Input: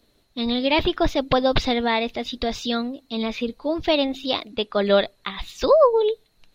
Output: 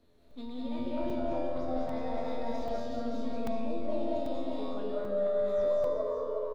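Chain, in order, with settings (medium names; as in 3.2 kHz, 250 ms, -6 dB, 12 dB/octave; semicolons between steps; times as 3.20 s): companding laws mixed up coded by mu; delay 367 ms -4.5 dB; in parallel at -5.5 dB: saturation -16.5 dBFS, distortion -11 dB; on the sum: feedback comb 85 Hz, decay 1.2 s, harmonics all, mix 90%; reverse; compression, threshold -37 dBFS, peak gain reduction 14.5 dB; reverse; treble shelf 2 kHz -12 dB; reverberation RT60 1.5 s, pre-delay 156 ms, DRR -5 dB; dynamic bell 2.8 kHz, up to -8 dB, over -58 dBFS, Q 1.3; crackling interface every 0.79 s, samples 128, zero, from 0.31 s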